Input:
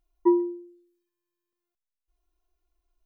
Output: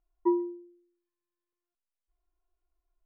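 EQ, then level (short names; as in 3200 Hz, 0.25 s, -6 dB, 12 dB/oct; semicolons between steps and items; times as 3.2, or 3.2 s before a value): LPF 1700 Hz; bell 130 Hz -8.5 dB 2.2 oct; -2.5 dB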